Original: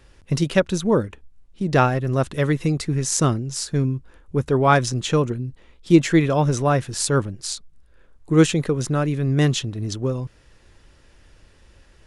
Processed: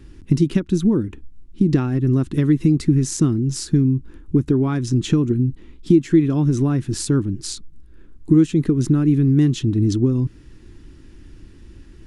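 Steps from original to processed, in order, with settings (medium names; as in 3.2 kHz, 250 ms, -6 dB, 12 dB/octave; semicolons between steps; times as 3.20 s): compression 10:1, threshold -24 dBFS, peak gain reduction 16.5 dB; resonant low shelf 420 Hz +9.5 dB, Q 3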